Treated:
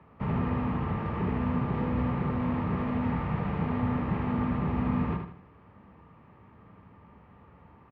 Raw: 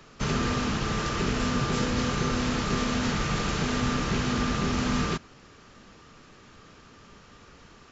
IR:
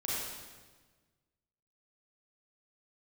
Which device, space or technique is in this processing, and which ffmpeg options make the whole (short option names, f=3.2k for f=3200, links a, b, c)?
bass cabinet: -af "highpass=66,equalizer=f=68:t=q:w=4:g=9,equalizer=f=100:t=q:w=4:g=8,equalizer=f=180:t=q:w=4:g=6,equalizer=f=380:t=q:w=4:g=-3,equalizer=f=900:t=q:w=4:g=7,equalizer=f=1.5k:t=q:w=4:g=-10,lowpass=f=2k:w=0.5412,lowpass=f=2k:w=1.3066,aecho=1:1:77|154|231|308|385:0.501|0.19|0.0724|0.0275|0.0105,volume=-4.5dB"